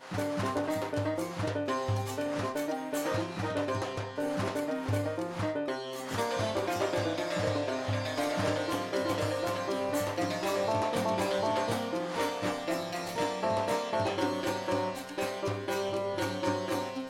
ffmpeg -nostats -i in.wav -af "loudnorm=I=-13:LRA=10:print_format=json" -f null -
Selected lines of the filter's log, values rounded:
"input_i" : "-32.2",
"input_tp" : "-17.0",
"input_lra" : "1.8",
"input_thresh" : "-42.2",